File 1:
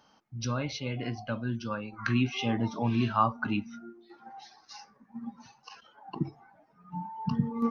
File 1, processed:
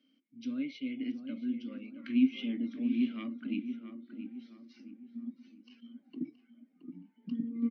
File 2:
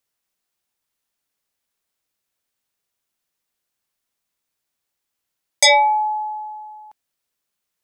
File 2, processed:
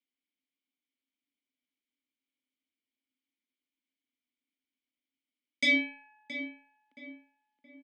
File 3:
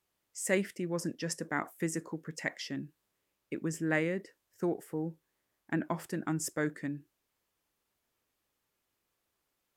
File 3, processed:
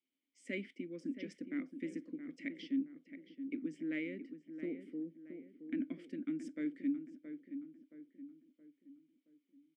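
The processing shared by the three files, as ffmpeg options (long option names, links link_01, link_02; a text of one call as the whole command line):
ffmpeg -i in.wav -filter_complex "[0:a]aeval=exprs='0.473*(cos(1*acos(clip(val(0)/0.473,-1,1)))-cos(1*PI/2))+0.15*(cos(2*acos(clip(val(0)/0.473,-1,1)))-cos(2*PI/2))+0.0422*(cos(5*acos(clip(val(0)/0.473,-1,1)))-cos(5*PI/2))':channel_layout=same,asplit=3[link_01][link_02][link_03];[link_01]bandpass=frequency=270:width_type=q:width=8,volume=0dB[link_04];[link_02]bandpass=frequency=2290:width_type=q:width=8,volume=-6dB[link_05];[link_03]bandpass=frequency=3010:width_type=q:width=8,volume=-9dB[link_06];[link_04][link_05][link_06]amix=inputs=3:normalize=0,highpass=frequency=180:width=0.5412,highpass=frequency=180:width=1.3066,equalizer=frequency=250:width_type=q:width=4:gain=4,equalizer=frequency=560:width_type=q:width=4:gain=6,equalizer=frequency=1700:width_type=q:width=4:gain=-4,equalizer=frequency=6900:width_type=q:width=4:gain=-5,lowpass=frequency=9500:width=0.5412,lowpass=frequency=9500:width=1.3066,asplit=2[link_07][link_08];[link_08]adelay=672,lowpass=frequency=1700:poles=1,volume=-9dB,asplit=2[link_09][link_10];[link_10]adelay=672,lowpass=frequency=1700:poles=1,volume=0.45,asplit=2[link_11][link_12];[link_12]adelay=672,lowpass=frequency=1700:poles=1,volume=0.45,asplit=2[link_13][link_14];[link_14]adelay=672,lowpass=frequency=1700:poles=1,volume=0.45,asplit=2[link_15][link_16];[link_16]adelay=672,lowpass=frequency=1700:poles=1,volume=0.45[link_17];[link_09][link_11][link_13][link_15][link_17]amix=inputs=5:normalize=0[link_18];[link_07][link_18]amix=inputs=2:normalize=0" out.wav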